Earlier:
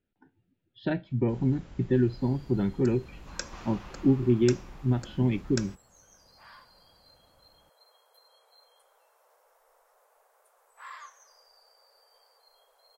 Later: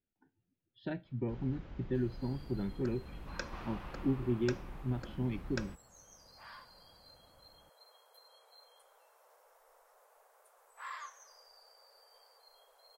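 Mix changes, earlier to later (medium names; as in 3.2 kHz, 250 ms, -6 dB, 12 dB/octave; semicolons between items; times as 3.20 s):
speech -10.0 dB; first sound: add distance through air 200 m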